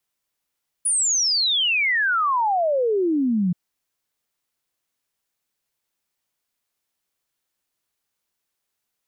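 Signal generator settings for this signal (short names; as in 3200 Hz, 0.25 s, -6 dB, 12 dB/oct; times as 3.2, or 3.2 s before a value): log sweep 10000 Hz -> 170 Hz 2.68 s -17.5 dBFS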